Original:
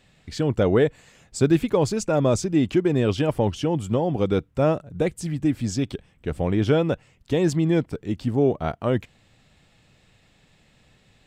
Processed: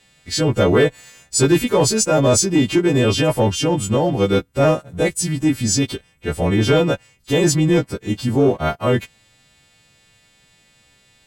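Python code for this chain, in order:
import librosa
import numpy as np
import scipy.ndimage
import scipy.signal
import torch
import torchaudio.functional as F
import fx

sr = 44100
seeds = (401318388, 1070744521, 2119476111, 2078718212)

y = fx.freq_snap(x, sr, grid_st=2)
y = fx.leveller(y, sr, passes=1)
y = F.gain(torch.from_numpy(y), 2.5).numpy()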